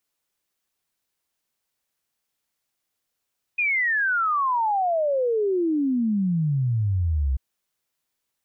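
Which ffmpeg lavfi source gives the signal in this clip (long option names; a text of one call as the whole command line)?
ffmpeg -f lavfi -i "aevalsrc='0.106*clip(min(t,3.79-t)/0.01,0,1)*sin(2*PI*2500*3.79/log(63/2500)*(exp(log(63/2500)*t/3.79)-1))':duration=3.79:sample_rate=44100" out.wav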